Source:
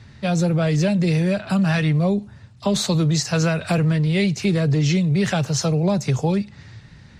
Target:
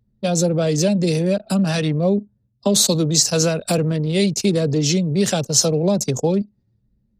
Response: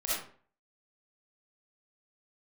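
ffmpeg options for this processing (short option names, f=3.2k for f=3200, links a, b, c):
-af "equalizer=f=250:t=o:w=1:g=11,equalizer=f=500:t=o:w=1:g=10,equalizer=f=2k:t=o:w=1:g=-7,crystalizer=i=9:c=0,anlmdn=10000,volume=-7.5dB"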